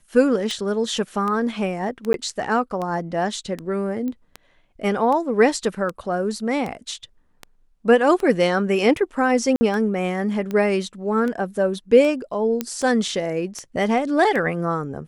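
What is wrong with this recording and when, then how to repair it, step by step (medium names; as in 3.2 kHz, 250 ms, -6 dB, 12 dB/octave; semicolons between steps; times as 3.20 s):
tick 78 rpm -16 dBFS
2.13–2.14 s: dropout 12 ms
4.08 s: pop -19 dBFS
9.56–9.61 s: dropout 50 ms
12.61 s: pop -9 dBFS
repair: de-click; interpolate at 2.13 s, 12 ms; interpolate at 9.56 s, 50 ms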